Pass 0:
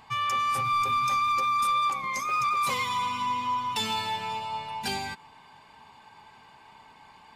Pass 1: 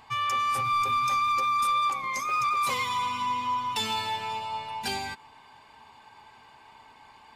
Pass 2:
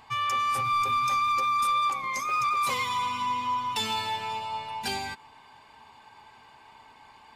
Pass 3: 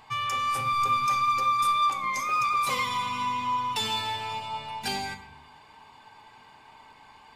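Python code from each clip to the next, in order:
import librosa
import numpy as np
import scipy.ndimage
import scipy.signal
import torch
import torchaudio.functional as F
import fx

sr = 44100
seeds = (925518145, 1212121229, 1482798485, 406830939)

y1 = fx.peak_eq(x, sr, hz=170.0, db=-9.0, octaves=0.39)
y2 = y1
y3 = fx.room_shoebox(y2, sr, seeds[0], volume_m3=250.0, walls='mixed', distance_m=0.47)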